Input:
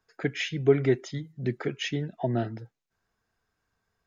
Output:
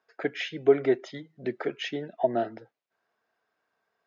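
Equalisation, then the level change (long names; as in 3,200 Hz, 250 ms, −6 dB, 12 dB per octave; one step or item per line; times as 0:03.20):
dynamic equaliser 2,300 Hz, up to −4 dB, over −43 dBFS, Q 1.4
band-pass filter 330–3,800 Hz
parametric band 630 Hz +5.5 dB 0.5 octaves
+2.0 dB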